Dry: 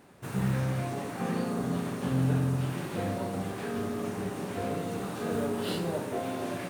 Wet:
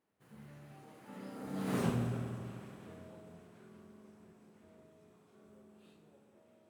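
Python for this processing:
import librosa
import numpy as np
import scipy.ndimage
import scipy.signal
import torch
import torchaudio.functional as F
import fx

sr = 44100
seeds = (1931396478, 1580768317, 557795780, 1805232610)

y = fx.doppler_pass(x, sr, speed_mps=34, closest_m=2.2, pass_at_s=1.79)
y = fx.hum_notches(y, sr, base_hz=50, count=3)
y = fx.rev_spring(y, sr, rt60_s=3.7, pass_ms=(47,), chirp_ms=80, drr_db=8.0)
y = y * 10.0 ** (2.5 / 20.0)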